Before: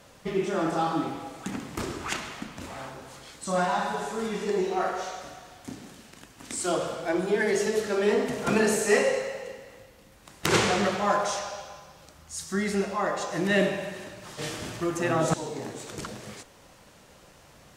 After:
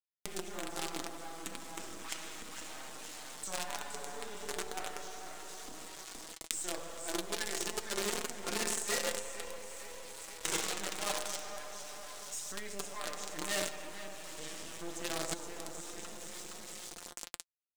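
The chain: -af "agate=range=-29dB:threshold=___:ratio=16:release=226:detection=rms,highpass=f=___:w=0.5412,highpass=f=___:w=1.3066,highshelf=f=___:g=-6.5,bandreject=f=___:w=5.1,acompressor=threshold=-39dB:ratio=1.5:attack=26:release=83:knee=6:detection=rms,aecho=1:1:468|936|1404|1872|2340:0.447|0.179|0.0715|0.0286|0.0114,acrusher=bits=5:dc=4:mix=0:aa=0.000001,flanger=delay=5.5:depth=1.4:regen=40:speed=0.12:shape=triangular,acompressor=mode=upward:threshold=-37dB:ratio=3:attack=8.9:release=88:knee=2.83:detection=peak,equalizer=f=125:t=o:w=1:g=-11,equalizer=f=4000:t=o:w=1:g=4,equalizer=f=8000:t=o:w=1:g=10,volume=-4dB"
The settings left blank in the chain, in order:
-41dB, 78, 78, 9300, 4400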